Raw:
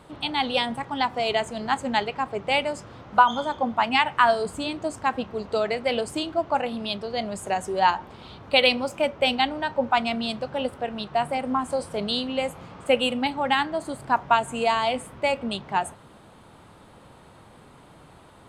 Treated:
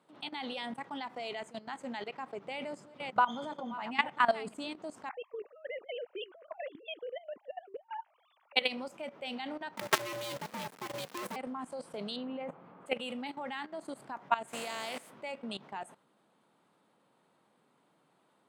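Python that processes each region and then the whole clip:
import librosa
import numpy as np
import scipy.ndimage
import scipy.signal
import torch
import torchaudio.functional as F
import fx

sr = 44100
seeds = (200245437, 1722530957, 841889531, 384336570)

y = fx.chain(x, sr, fx.reverse_delay(ms=348, wet_db=-10.5),
    fx.low_shelf(hz=380.0, db=7.0), at=(2.45, 4.55))
y = fx.chain(y, sr, fx.sine_speech(),
    fx.over_compress(threshold_db=-30.0, ratio=-0.5), at=(5.09, 8.56))
y = fx.chain(y, sr, fx.quant_companded(bits=2),
    fx.ring_mod(carrier_hz=350.0), at=(9.77, 11.36))
y = fx.chain(y, sr, fx.lowpass(hz=1600.0, slope=12),
    fx.env_flatten(amount_pct=50), at=(12.16, 12.86))
y = fx.spec_flatten(y, sr, power=0.5, at=(14.47, 15.09), fade=0.02)
y = fx.peak_eq(y, sr, hz=620.0, db=5.5, octaves=0.59, at=(14.47, 15.09), fade=0.02)
y = scipy.signal.sosfilt(scipy.signal.butter(4, 170.0, 'highpass', fs=sr, output='sos'), y)
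y = fx.dynamic_eq(y, sr, hz=2000.0, q=3.5, threshold_db=-41.0, ratio=4.0, max_db=4)
y = fx.level_steps(y, sr, step_db=16)
y = y * librosa.db_to_amplitude(-7.0)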